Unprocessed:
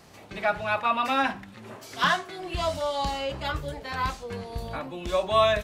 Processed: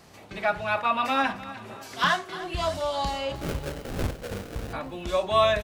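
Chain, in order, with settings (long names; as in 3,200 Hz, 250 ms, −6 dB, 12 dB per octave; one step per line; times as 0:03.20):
0:03.35–0:04.73: sample-rate reduction 1,000 Hz, jitter 20%
on a send: repeating echo 302 ms, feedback 47%, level −16 dB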